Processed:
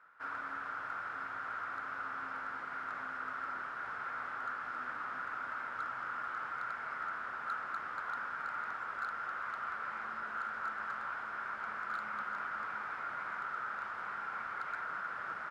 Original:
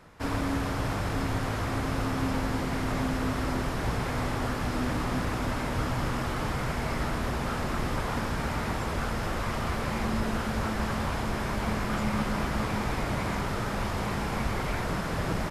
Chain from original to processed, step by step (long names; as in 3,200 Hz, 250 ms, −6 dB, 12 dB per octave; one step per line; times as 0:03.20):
resonant band-pass 1,400 Hz, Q 6.7
gain into a clipping stage and back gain 33.5 dB
level +3 dB